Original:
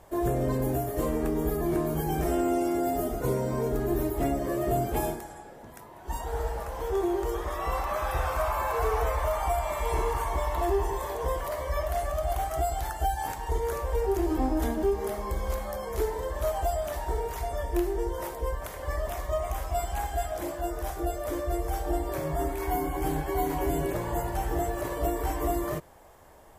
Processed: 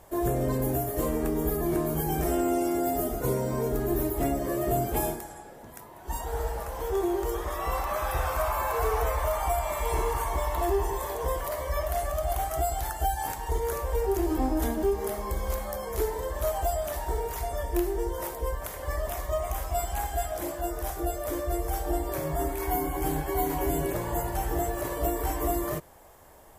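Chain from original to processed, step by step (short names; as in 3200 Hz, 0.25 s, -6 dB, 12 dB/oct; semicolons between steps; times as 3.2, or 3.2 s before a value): high shelf 8300 Hz +8 dB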